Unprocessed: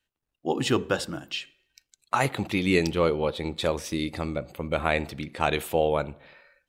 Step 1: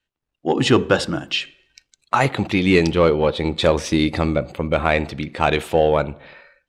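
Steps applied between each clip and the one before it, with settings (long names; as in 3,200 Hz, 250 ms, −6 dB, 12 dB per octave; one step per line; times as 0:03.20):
automatic gain control gain up to 12 dB
in parallel at −8.5 dB: hard clipping −14.5 dBFS, distortion −10 dB
on the sum: high-frequency loss of the air 62 metres
level −1 dB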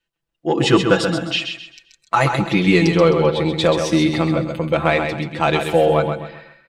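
comb filter 6 ms, depth 79%
on a send: repeating echo 131 ms, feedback 33%, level −6.5 dB
on the sum: level −1.5 dB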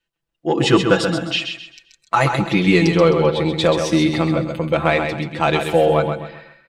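no processing that can be heard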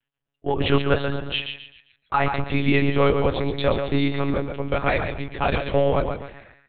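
one-pitch LPC vocoder at 8 kHz 140 Hz
level −4.5 dB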